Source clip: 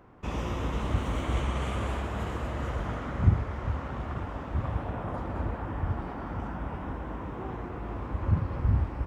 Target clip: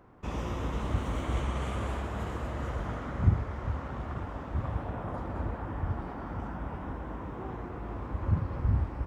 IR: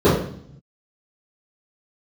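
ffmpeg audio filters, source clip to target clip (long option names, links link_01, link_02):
-af "equalizer=frequency=2700:width_type=o:width=0.77:gain=-2.5,volume=-2dB"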